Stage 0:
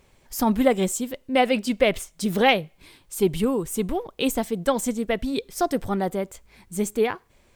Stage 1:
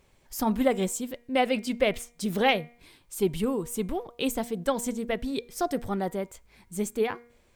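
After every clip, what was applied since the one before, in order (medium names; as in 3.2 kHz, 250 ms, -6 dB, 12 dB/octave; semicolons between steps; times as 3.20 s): de-hum 237.9 Hz, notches 10; trim -4.5 dB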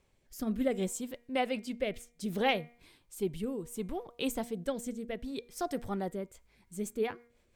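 rotary cabinet horn 0.65 Hz, later 6 Hz, at 5.98 s; trim -5 dB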